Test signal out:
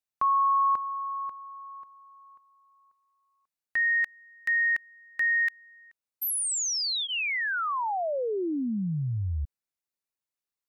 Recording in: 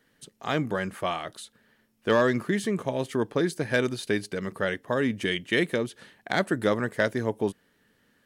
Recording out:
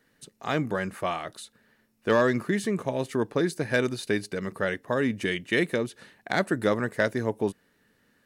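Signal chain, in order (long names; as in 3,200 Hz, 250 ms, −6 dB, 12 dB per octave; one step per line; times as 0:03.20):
notch filter 3,200 Hz, Q 11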